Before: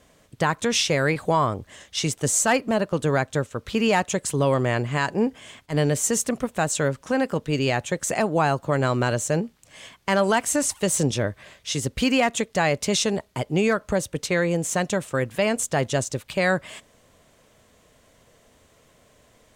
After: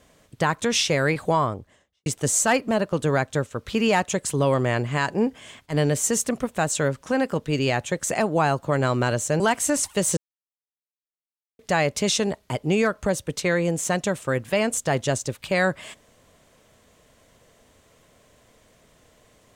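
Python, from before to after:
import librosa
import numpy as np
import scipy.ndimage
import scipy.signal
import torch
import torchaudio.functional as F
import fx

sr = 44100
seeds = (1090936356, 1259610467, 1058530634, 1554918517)

y = fx.studio_fade_out(x, sr, start_s=1.28, length_s=0.78)
y = fx.edit(y, sr, fx.cut(start_s=9.4, length_s=0.86),
    fx.silence(start_s=11.03, length_s=1.42), tone=tone)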